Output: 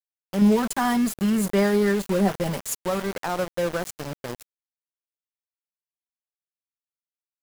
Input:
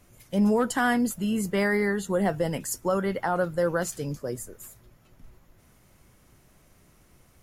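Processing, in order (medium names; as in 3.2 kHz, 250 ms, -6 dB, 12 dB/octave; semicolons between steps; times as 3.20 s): treble shelf 9.4 kHz +2 dB; 0.41–2.77 s: comb 5.1 ms, depth 88%; dynamic bell 2.4 kHz, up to -6 dB, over -41 dBFS, Q 1.2; small samples zeroed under -27.5 dBFS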